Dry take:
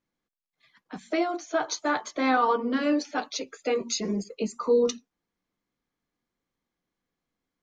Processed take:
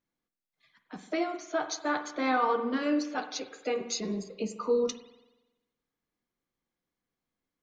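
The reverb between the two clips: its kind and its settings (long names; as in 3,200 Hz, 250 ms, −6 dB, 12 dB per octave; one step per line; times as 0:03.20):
spring reverb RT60 1.1 s, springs 47 ms, chirp 55 ms, DRR 9.5 dB
level −4 dB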